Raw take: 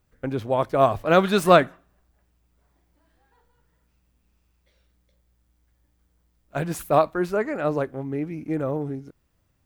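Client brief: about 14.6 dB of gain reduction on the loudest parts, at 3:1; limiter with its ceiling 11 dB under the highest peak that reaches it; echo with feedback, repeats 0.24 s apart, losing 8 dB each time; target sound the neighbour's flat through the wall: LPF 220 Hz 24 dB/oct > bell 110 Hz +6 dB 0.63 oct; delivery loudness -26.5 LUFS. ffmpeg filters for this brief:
-af "acompressor=threshold=-30dB:ratio=3,alimiter=level_in=3.5dB:limit=-24dB:level=0:latency=1,volume=-3.5dB,lowpass=f=220:w=0.5412,lowpass=f=220:w=1.3066,equalizer=f=110:t=o:w=0.63:g=6,aecho=1:1:240|480|720|960|1200:0.398|0.159|0.0637|0.0255|0.0102,volume=15dB"

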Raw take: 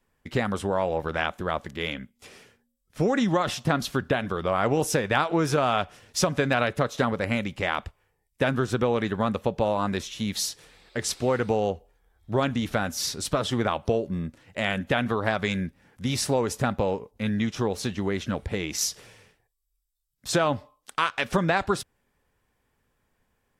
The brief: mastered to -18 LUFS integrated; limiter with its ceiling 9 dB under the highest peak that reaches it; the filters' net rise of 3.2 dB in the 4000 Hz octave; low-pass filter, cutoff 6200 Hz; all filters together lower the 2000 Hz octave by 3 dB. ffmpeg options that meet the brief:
-af "lowpass=6.2k,equalizer=f=2k:t=o:g=-5.5,equalizer=f=4k:t=o:g=6.5,volume=11.5dB,alimiter=limit=-6dB:level=0:latency=1"

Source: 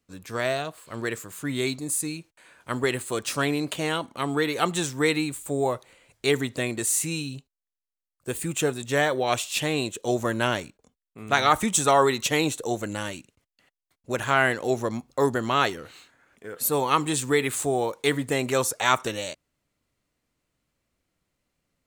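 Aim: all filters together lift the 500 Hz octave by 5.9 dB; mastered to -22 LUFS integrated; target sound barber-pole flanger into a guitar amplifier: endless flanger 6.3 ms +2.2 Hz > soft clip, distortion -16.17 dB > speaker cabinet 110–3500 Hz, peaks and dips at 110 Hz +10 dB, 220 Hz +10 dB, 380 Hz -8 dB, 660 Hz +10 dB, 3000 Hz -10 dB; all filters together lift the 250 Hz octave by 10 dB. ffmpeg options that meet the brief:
-filter_complex "[0:a]equalizer=f=250:t=o:g=7.5,equalizer=f=500:t=o:g=3,asplit=2[a][b];[b]adelay=6.3,afreqshift=2.2[c];[a][c]amix=inputs=2:normalize=1,asoftclip=threshold=-14dB,highpass=110,equalizer=f=110:t=q:w=4:g=10,equalizer=f=220:t=q:w=4:g=10,equalizer=f=380:t=q:w=4:g=-8,equalizer=f=660:t=q:w=4:g=10,equalizer=f=3k:t=q:w=4:g=-10,lowpass=f=3.5k:w=0.5412,lowpass=f=3.5k:w=1.3066,volume=3dB"

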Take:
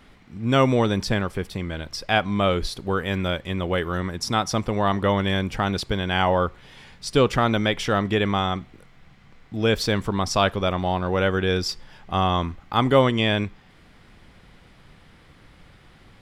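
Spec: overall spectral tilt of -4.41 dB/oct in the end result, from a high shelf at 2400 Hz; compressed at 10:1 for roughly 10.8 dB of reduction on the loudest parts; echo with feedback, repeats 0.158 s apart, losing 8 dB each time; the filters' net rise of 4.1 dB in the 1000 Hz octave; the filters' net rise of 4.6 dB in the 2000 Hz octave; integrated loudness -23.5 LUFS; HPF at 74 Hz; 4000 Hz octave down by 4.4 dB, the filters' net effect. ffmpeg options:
-af "highpass=74,equalizer=f=1k:t=o:g=4.5,equalizer=f=2k:t=o:g=8,highshelf=f=2.4k:g=-6,equalizer=f=4k:t=o:g=-4,acompressor=threshold=-22dB:ratio=10,aecho=1:1:158|316|474|632|790:0.398|0.159|0.0637|0.0255|0.0102,volume=4dB"

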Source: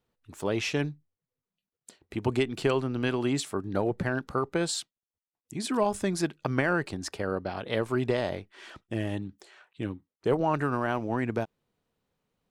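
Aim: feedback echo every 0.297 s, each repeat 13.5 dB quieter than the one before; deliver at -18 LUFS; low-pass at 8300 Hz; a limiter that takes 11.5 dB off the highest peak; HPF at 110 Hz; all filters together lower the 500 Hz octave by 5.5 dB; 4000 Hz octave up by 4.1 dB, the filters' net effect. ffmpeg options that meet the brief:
-af "highpass=110,lowpass=8.3k,equalizer=f=500:t=o:g=-7.5,equalizer=f=4k:t=o:g=5.5,alimiter=limit=-23dB:level=0:latency=1,aecho=1:1:297|594:0.211|0.0444,volume=17.5dB"

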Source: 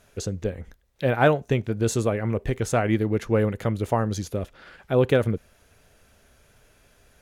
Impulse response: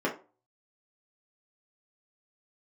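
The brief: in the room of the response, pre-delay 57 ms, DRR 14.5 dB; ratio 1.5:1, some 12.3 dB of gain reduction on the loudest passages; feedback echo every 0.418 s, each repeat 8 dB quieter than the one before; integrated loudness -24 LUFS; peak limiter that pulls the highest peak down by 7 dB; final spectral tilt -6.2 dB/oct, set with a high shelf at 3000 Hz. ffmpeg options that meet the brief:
-filter_complex "[0:a]highshelf=f=3k:g=-5.5,acompressor=threshold=-50dB:ratio=1.5,alimiter=level_in=3dB:limit=-24dB:level=0:latency=1,volume=-3dB,aecho=1:1:418|836|1254|1672|2090:0.398|0.159|0.0637|0.0255|0.0102,asplit=2[a][b];[1:a]atrim=start_sample=2205,adelay=57[c];[b][c]afir=irnorm=-1:irlink=0,volume=-24.5dB[d];[a][d]amix=inputs=2:normalize=0,volume=14dB"

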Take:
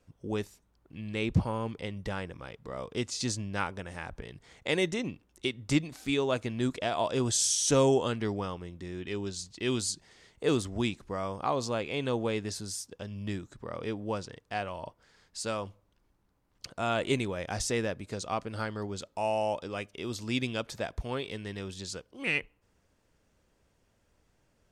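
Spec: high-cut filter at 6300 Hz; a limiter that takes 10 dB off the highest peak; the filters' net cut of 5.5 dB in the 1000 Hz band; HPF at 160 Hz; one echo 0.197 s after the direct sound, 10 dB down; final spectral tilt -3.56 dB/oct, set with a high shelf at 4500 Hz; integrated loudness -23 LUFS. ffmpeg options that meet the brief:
-af "highpass=160,lowpass=6.3k,equalizer=f=1k:t=o:g=-8,highshelf=f=4.5k:g=3,alimiter=limit=-23.5dB:level=0:latency=1,aecho=1:1:197:0.316,volume=13.5dB"

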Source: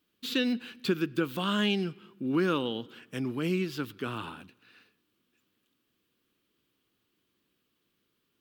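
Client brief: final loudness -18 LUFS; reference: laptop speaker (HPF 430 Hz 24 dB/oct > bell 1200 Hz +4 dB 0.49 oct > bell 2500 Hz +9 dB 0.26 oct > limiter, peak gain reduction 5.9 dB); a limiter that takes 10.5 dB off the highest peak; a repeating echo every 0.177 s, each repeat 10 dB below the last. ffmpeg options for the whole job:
-af "alimiter=level_in=1dB:limit=-24dB:level=0:latency=1,volume=-1dB,highpass=f=430:w=0.5412,highpass=f=430:w=1.3066,equalizer=f=1.2k:t=o:w=0.49:g=4,equalizer=f=2.5k:t=o:w=0.26:g=9,aecho=1:1:177|354|531|708:0.316|0.101|0.0324|0.0104,volume=21dB,alimiter=limit=-7dB:level=0:latency=1"

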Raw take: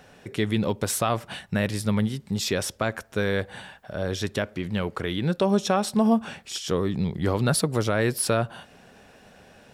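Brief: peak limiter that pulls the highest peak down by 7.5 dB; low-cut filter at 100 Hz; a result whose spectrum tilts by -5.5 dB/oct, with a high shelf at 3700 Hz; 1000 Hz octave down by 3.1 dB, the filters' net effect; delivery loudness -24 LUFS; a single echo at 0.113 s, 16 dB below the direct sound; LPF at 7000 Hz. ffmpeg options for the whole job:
-af "highpass=100,lowpass=7k,equalizer=f=1k:t=o:g=-4,highshelf=f=3.7k:g=-5.5,alimiter=limit=-18.5dB:level=0:latency=1,aecho=1:1:113:0.158,volume=6.5dB"

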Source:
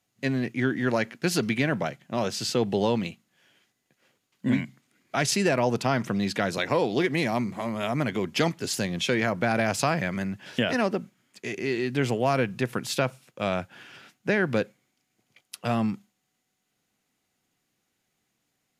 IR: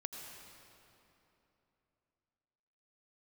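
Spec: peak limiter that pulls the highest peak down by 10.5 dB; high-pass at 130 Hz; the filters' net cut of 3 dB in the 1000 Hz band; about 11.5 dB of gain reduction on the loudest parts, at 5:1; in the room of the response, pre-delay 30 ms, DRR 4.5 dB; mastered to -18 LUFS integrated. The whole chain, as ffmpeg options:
-filter_complex "[0:a]highpass=130,equalizer=f=1k:t=o:g=-4.5,acompressor=threshold=-34dB:ratio=5,alimiter=level_in=4dB:limit=-24dB:level=0:latency=1,volume=-4dB,asplit=2[a][b];[1:a]atrim=start_sample=2205,adelay=30[c];[b][c]afir=irnorm=-1:irlink=0,volume=-3dB[d];[a][d]amix=inputs=2:normalize=0,volume=20dB"

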